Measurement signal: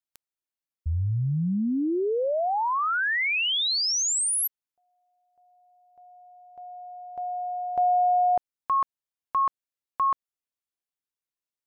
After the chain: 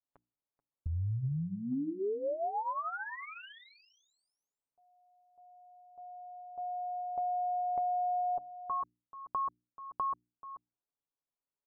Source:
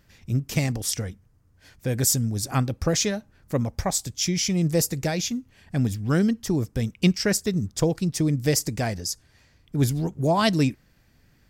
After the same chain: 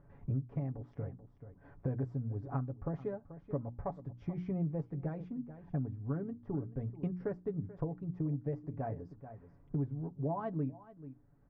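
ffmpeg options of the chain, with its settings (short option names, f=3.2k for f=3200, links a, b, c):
-af "lowpass=f=1.1k:w=0.5412,lowpass=f=1.1k:w=1.3066,aemphasis=mode=production:type=75kf,bandreject=f=60:t=h:w=6,bandreject=f=120:t=h:w=6,bandreject=f=180:t=h:w=6,bandreject=f=240:t=h:w=6,bandreject=f=300:t=h:w=6,bandreject=f=360:t=h:w=6,aecho=1:1:7.1:0.59,aecho=1:1:434:0.119,acompressor=threshold=-31dB:ratio=8:attack=10:release=932:knee=1:detection=rms"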